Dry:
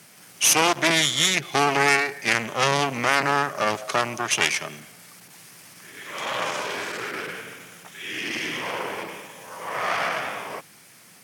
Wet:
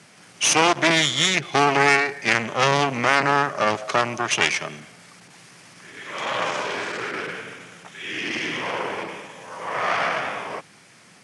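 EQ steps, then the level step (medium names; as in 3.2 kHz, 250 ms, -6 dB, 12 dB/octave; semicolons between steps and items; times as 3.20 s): Chebyshev low-pass 11 kHz, order 5; distance through air 58 m; +3.0 dB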